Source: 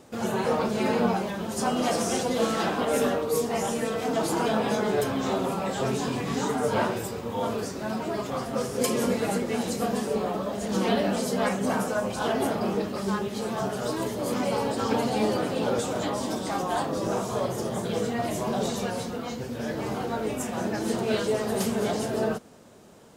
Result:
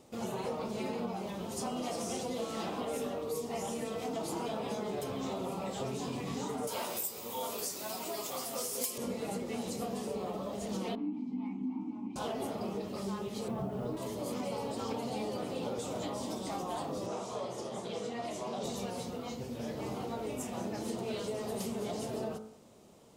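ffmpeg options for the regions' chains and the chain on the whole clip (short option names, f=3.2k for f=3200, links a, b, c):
-filter_complex "[0:a]asettb=1/sr,asplit=3[a][b][c];[a]atrim=end=6.674[d];[b]atrim=start=6.67:end=8.98,asetpts=PTS-STARTPTS,afade=t=in:d=0.004:c=qsin,afade=t=out:st=2.306:d=0.004:c=qsin,aemphasis=mode=production:type=riaa,aeval=exprs='0.355*(abs(mod(val(0)/0.355+3,4)-2)-1)':c=same,asplit=2[e][f];[f]adelay=12,volume=-11dB[g];[e][g]amix=inputs=2:normalize=0,atrim=end_sample=101871[h];[c]atrim=start=8.976[i];[d][h]acrossfade=d=0.004:c1=hsin:c2=qsin[j];[j][i]acrossfade=d=0.004:c1=qsin:c2=hsin,asettb=1/sr,asplit=3[k][l][m];[k]atrim=end=10.954[n];[l]atrim=start=10.95:end=12.16,asetpts=PTS-STARTPTS,afade=t=in:d=0.004:c=qsin,afade=t=out:st=1.206:d=0.004:c=qsin,acrossover=split=5800[o][p];[p]acompressor=threshold=-49dB:ratio=4:attack=1:release=60[q];[o][q]amix=inputs=2:normalize=0,asplit=3[r][s][t];[r]bandpass=f=300:t=q:w=8,volume=0dB[u];[s]bandpass=f=870:t=q:w=8,volume=-6dB[v];[t]bandpass=f=2.24k:t=q:w=8,volume=-9dB[w];[u][v][w]amix=inputs=3:normalize=0,lowshelf=f=350:t=q:w=3:g=8[x];[m]atrim=start=12.156[y];[n][x]acrossfade=d=0.004:c1=hsin:c2=qsin[z];[z][y]acrossfade=d=0.004:c1=qsin:c2=hsin,asettb=1/sr,asplit=3[aa][ab][ac];[aa]atrim=end=13.484[ad];[ab]atrim=start=13.48:end=13.97,asetpts=PTS-STARTPTS,afade=t=in:d=0.004:c=qsin,afade=t=out:st=0.486:d=0.004:c=qsin,lowpass=2.3k,lowshelf=f=390:g=10,acrusher=bits=7:mix=0:aa=0.5[ae];[ac]atrim=start=13.966[af];[ad][ae]acrossfade=d=0.004:c1=hsin:c2=qsin[ag];[ag][af]acrossfade=d=0.004:c1=qsin:c2=hsin,asettb=1/sr,asplit=3[ah][ai][aj];[ah]atrim=end=17.064[ak];[ai]atrim=start=17.06:end=18.64,asetpts=PTS-STARTPTS,afade=t=in:d=0.004:c=qsin,afade=t=out:st=1.576:d=0.004:c=qsin,lowpass=7.4k,lowshelf=f=220:g=-11,bandreject=f=50:t=h:w=6,bandreject=f=100:t=h:w=6,bandreject=f=150:t=h:w=6[al];[aj]atrim=start=18.636[am];[ak][al]acrossfade=d=0.004:c1=hsin:c2=qsin[an];[an][am]acrossfade=d=0.004:c1=qsin:c2=hsin,equalizer=f=1.6k:t=o:w=0.42:g=-9.5,bandreject=f=54.49:t=h:w=4,bandreject=f=108.98:t=h:w=4,bandreject=f=163.47:t=h:w=4,bandreject=f=217.96:t=h:w=4,bandreject=f=272.45:t=h:w=4,bandreject=f=326.94:t=h:w=4,bandreject=f=381.43:t=h:w=4,bandreject=f=435.92:t=h:w=4,bandreject=f=490.41:t=h:w=4,bandreject=f=544.9:t=h:w=4,bandreject=f=599.39:t=h:w=4,bandreject=f=653.88:t=h:w=4,bandreject=f=708.37:t=h:w=4,bandreject=f=762.86:t=h:w=4,bandreject=f=817.35:t=h:w=4,bandreject=f=871.84:t=h:w=4,bandreject=f=926.33:t=h:w=4,bandreject=f=980.82:t=h:w=4,bandreject=f=1.03531k:t=h:w=4,bandreject=f=1.0898k:t=h:w=4,bandreject=f=1.14429k:t=h:w=4,bandreject=f=1.19878k:t=h:w=4,bandreject=f=1.25327k:t=h:w=4,bandreject=f=1.30776k:t=h:w=4,bandreject=f=1.36225k:t=h:w=4,bandreject=f=1.41674k:t=h:w=4,bandreject=f=1.47123k:t=h:w=4,bandreject=f=1.52572k:t=h:w=4,bandreject=f=1.58021k:t=h:w=4,bandreject=f=1.6347k:t=h:w=4,bandreject=f=1.68919k:t=h:w=4,acompressor=threshold=-27dB:ratio=6,volume=-6dB"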